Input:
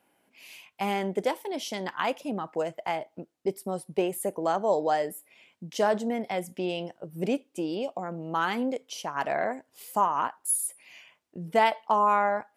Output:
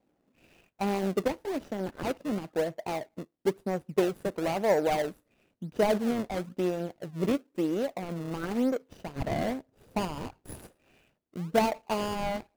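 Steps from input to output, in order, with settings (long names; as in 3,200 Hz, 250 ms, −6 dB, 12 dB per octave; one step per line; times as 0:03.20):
running median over 41 samples
in parallel at −7.5 dB: sample-and-hold swept by an LFO 32×, swing 160% 1 Hz
0:09.16–0:10.59: on the sum: low-shelf EQ 200 Hz +8 dB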